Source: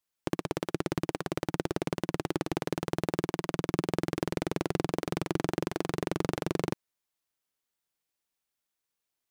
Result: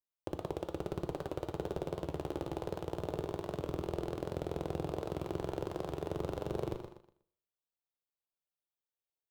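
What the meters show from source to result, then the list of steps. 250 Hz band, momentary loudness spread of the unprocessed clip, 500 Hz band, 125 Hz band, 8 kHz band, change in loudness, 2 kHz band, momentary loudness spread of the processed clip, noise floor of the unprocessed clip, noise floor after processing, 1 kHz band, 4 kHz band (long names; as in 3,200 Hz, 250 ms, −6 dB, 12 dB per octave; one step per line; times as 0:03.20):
−8.5 dB, 2 LU, −4.0 dB, −5.5 dB, −13.5 dB, −6.0 dB, −13.5 dB, 2 LU, below −85 dBFS, below −85 dBFS, −6.5 dB, −11.0 dB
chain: sub-octave generator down 1 octave, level −6 dB
flat-topped bell 7,800 Hz −10 dB
repeating echo 121 ms, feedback 35%, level −10 dB
reverb whose tail is shaped and stops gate 280 ms falling, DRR 10 dB
leveller curve on the samples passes 1
octave-band graphic EQ 250/500/2,000 Hz −9/+5/−10 dB
wow of a warped record 78 rpm, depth 100 cents
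level −8.5 dB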